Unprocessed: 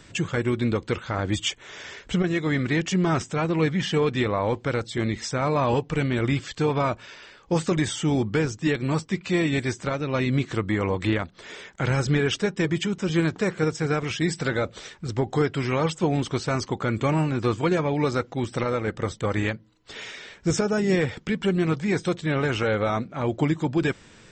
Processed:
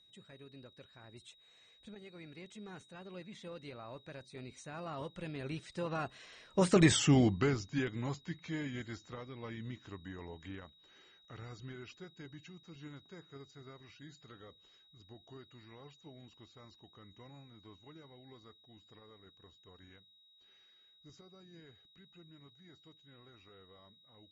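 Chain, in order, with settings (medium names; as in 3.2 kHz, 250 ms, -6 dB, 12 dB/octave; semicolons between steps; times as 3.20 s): Doppler pass-by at 6.93 s, 43 m/s, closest 9.5 m; whistle 3.8 kHz -63 dBFS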